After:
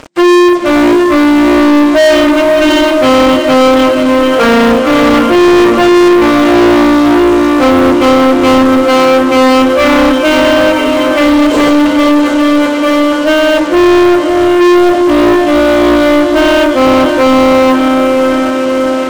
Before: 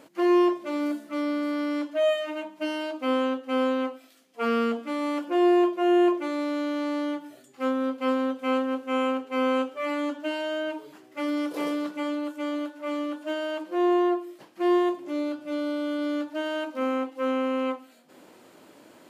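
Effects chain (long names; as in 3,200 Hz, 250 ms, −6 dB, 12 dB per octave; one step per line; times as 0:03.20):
hearing-aid frequency compression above 3,200 Hz 1.5 to 1
feedback delay with all-pass diffusion 560 ms, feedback 67%, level −8 dB
leveller curve on the samples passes 5
level +7.5 dB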